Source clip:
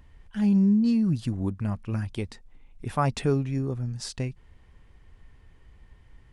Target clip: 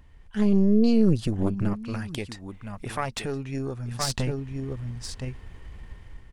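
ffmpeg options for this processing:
ffmpeg -i in.wav -filter_complex "[0:a]dynaudnorm=framelen=240:gausssize=5:maxgain=10.5dB,aecho=1:1:1018:0.251,alimiter=limit=-15.5dB:level=0:latency=1:release=495,asettb=1/sr,asplit=3[link_01][link_02][link_03];[link_01]atrim=end=1.734[link_04];[link_02]atrim=start=1.73:end=4,asetpts=PTS-STARTPTS,afade=type=in:duration=0.004:curve=qsin,afade=type=out:start_time=2.266:duration=0.004:curve=qsin,lowshelf=frequency=350:gain=-9[link_05];[link_03]atrim=start=3.996[link_06];[link_04][link_05]acrossfade=duration=0.004:curve1=hsin:curve2=qsin[link_07];[link_07][link_06]acrossfade=duration=0.004:curve1=qsin:curve2=hsin,aeval=exprs='0.168*(cos(1*acos(clip(val(0)/0.168,-1,1)))-cos(1*PI/2))+0.075*(cos(2*acos(clip(val(0)/0.168,-1,1)))-cos(2*PI/2))':channel_layout=same" out.wav

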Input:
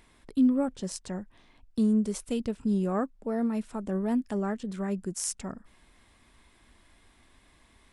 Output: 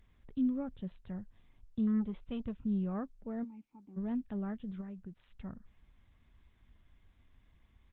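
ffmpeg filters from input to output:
ffmpeg -i in.wav -filter_complex "[0:a]firequalizer=gain_entry='entry(100,0);entry(330,-13);entry(3000,-11)':delay=0.05:min_phase=1,asettb=1/sr,asplit=3[link_01][link_02][link_03];[link_01]atrim=end=1.874[link_04];[link_02]atrim=start=1.87:end=2.53,asetpts=PTS-STARTPTS,afade=type=in:duration=0.004:curve=qsin,afade=type=out:start_time=0.656:duration=0.004:curve=qsin,aeval=exprs='0.0562*(cos(1*acos(clip(val(0)/0.0562,-1,1)))-cos(1*PI/2))+0.00224*(cos(2*acos(clip(val(0)/0.0562,-1,1)))-cos(2*PI/2))+0.000794*(cos(4*acos(clip(val(0)/0.0562,-1,1)))-cos(4*PI/2))+0.00251*(cos(8*acos(clip(val(0)/0.0562,-1,1)))-cos(8*PI/2))':channel_layout=same[link_05];[link_03]atrim=start=2.526[link_06];[link_04][link_05]acrossfade=duration=0.004:curve1=hsin:curve2=qsin[link_07];[link_07][link_06]acrossfade=duration=0.004:curve1=qsin:curve2=hsin,asplit=3[link_08][link_09][link_10];[link_08]afade=type=out:start_time=4.8:duration=0.02[link_11];[link_09]acompressor=threshold=-42dB:ratio=20,afade=type=in:start_time=4.8:duration=0.02,afade=type=out:start_time=5.3:duration=0.02[link_12];[link_10]afade=type=in:start_time=5.3:duration=0.02[link_13];[link_11][link_12][link_13]amix=inputs=3:normalize=0,aresample=8000,aresample=44100,asplit=3[link_14][link_15][link_16];[link_14]afade=type=out:start_time=3.43:duration=0.02[link_17];[link_15]asplit=3[link_18][link_19][link_20];[link_18]bandpass=frequency=300:width_type=q:width=8,volume=0dB[link_21];[link_19]bandpass=frequency=870:width_type=q:width=8,volume=-6dB[link_22];[link_20]bandpass=frequency=2240:width_type=q:width=8,volume=-9dB[link_23];[link_21][link_22][link_23]amix=inputs=3:normalize=0,afade=type=in:start_time=3.43:duration=0.02,afade=type=out:start_time=3.96:duration=0.02[link_24];[link_16]afade=type=in:start_time=3.96:duration=0.02[link_25];[link_17][link_24][link_25]amix=inputs=3:normalize=0" -ar 48000 -c:a libopus -b:a 32k out.opus

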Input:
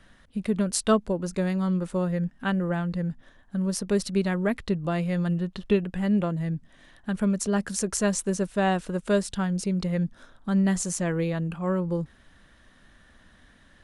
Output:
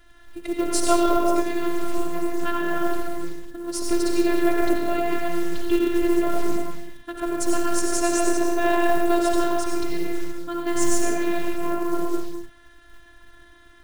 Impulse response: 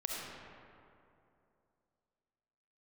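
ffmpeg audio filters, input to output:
-filter_complex "[0:a]aeval=exprs='0.422*(cos(1*acos(clip(val(0)/0.422,-1,1)))-cos(1*PI/2))+0.0106*(cos(2*acos(clip(val(0)/0.422,-1,1)))-cos(2*PI/2))+0.00944*(cos(5*acos(clip(val(0)/0.422,-1,1)))-cos(5*PI/2))+0.00841*(cos(7*acos(clip(val(0)/0.422,-1,1)))-cos(7*PI/2))+0.0133*(cos(8*acos(clip(val(0)/0.422,-1,1)))-cos(8*PI/2))':channel_layout=same[link_01];[1:a]atrim=start_sample=2205,afade=type=out:start_time=0.39:duration=0.01,atrim=end_sample=17640,asetrate=32634,aresample=44100[link_02];[link_01][link_02]afir=irnorm=-1:irlink=0,afftfilt=real='hypot(re,im)*cos(PI*b)':imag='0':win_size=512:overlap=0.75,acrusher=bits=6:mode=log:mix=0:aa=0.000001,volume=4.5dB"

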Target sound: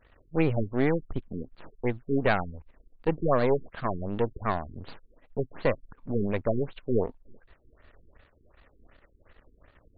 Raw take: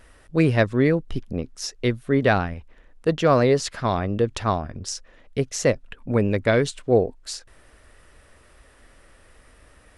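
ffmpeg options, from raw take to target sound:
ffmpeg -i in.wav -af "aeval=exprs='if(lt(val(0),0),0.251*val(0),val(0))':channel_layout=same,afftfilt=real='re*lt(b*sr/1024,430*pow(4800/430,0.5+0.5*sin(2*PI*2.7*pts/sr)))':imag='im*lt(b*sr/1024,430*pow(4800/430,0.5+0.5*sin(2*PI*2.7*pts/sr)))':win_size=1024:overlap=0.75,volume=-2dB" out.wav

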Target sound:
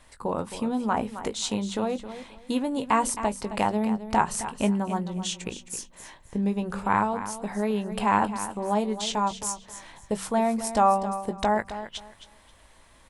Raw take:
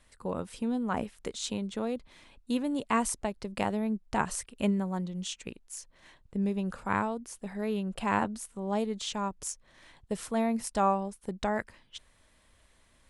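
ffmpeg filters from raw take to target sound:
ffmpeg -i in.wav -filter_complex "[0:a]equalizer=frequency=870:width=2.1:gain=6.5,bandreject=frequency=47.92:width_type=h:width=4,bandreject=frequency=95.84:width_type=h:width=4,bandreject=frequency=143.76:width_type=h:width=4,bandreject=frequency=191.68:width_type=h:width=4,bandreject=frequency=239.6:width_type=h:width=4,asplit=2[link_01][link_02];[link_02]acompressor=threshold=-35dB:ratio=6,volume=2dB[link_03];[link_01][link_03]amix=inputs=2:normalize=0,asplit=2[link_04][link_05];[link_05]adelay=19,volume=-10.5dB[link_06];[link_04][link_06]amix=inputs=2:normalize=0,aecho=1:1:266|532|798:0.251|0.0578|0.0133" out.wav

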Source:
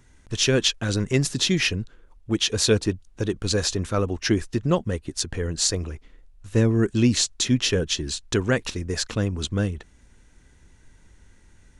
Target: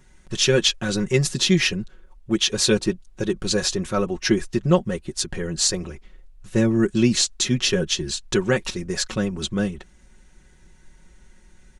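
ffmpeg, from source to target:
ffmpeg -i in.wav -af "aecho=1:1:5.4:0.75" out.wav

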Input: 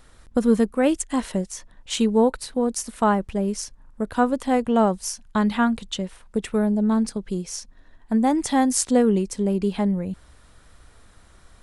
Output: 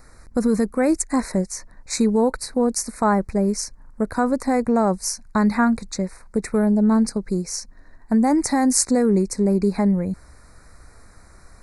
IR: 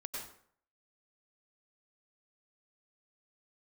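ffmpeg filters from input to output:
-filter_complex "[0:a]acrossover=split=2300[link_01][link_02];[link_01]alimiter=limit=-14.5dB:level=0:latency=1:release=35[link_03];[link_03][link_02]amix=inputs=2:normalize=0,asuperstop=centerf=3100:order=8:qfactor=1.9,volume=4dB"

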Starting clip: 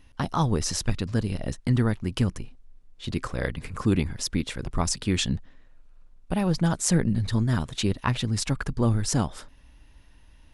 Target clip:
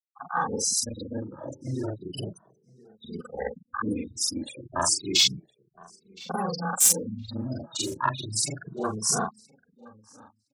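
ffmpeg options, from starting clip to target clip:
ffmpeg -i in.wav -filter_complex "[0:a]afftfilt=real='re':imag='-im':win_size=4096:overlap=0.75,afwtdn=0.02,aderivative,bandreject=frequency=3200:width=11,dynaudnorm=framelen=130:gausssize=7:maxgain=13.5dB,afftfilt=real='re*gte(hypot(re,im),0.00794)':imag='im*gte(hypot(re,im),0.00794)':win_size=1024:overlap=0.75,asoftclip=type=tanh:threshold=-19dB,asplit=2[link_01][link_02];[link_02]adelay=1016,lowpass=frequency=3100:poles=1,volume=-23dB,asplit=2[link_03][link_04];[link_04]adelay=1016,lowpass=frequency=3100:poles=1,volume=0.17[link_05];[link_01][link_03][link_05]amix=inputs=3:normalize=0,alimiter=level_in=23.5dB:limit=-1dB:release=50:level=0:latency=1,asplit=2[link_06][link_07];[link_07]adelay=2.2,afreqshift=0.32[link_08];[link_06][link_08]amix=inputs=2:normalize=1,volume=-6.5dB" out.wav

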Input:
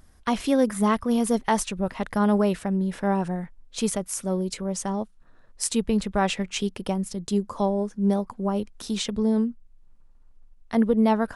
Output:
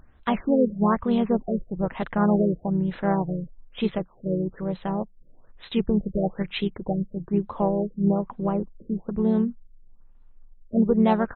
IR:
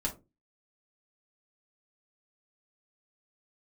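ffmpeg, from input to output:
-filter_complex "[0:a]asplit=2[link_01][link_02];[link_02]asetrate=37084,aresample=44100,atempo=1.18921,volume=-8dB[link_03];[link_01][link_03]amix=inputs=2:normalize=0,afftfilt=real='re*lt(b*sr/1024,580*pow(4200/580,0.5+0.5*sin(2*PI*1.1*pts/sr)))':imag='im*lt(b*sr/1024,580*pow(4200/580,0.5+0.5*sin(2*PI*1.1*pts/sr)))':win_size=1024:overlap=0.75"

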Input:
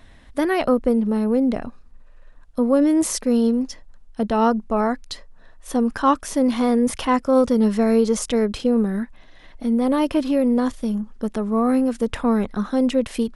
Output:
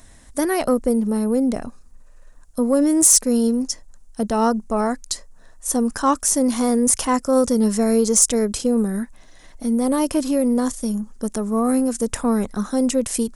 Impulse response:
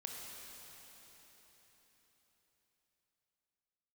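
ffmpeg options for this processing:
-af "highshelf=frequency=4900:width_type=q:width=1.5:gain=13.5,asoftclip=type=tanh:threshold=-3.5dB"

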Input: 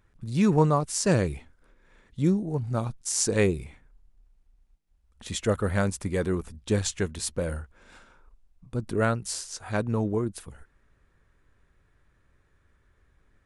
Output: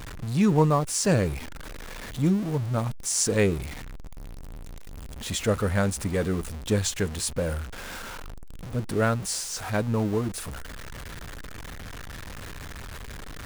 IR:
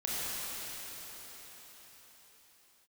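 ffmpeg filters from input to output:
-af "aeval=exprs='val(0)+0.5*0.0237*sgn(val(0))':channel_layout=same,bandreject=frequency=360:width=12"

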